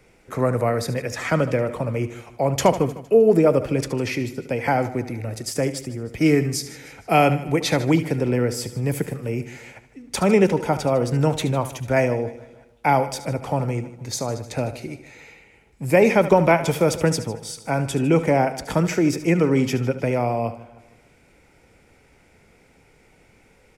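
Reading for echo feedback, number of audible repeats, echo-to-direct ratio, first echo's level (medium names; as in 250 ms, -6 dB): no regular repeats, 5, -11.5 dB, -13.5 dB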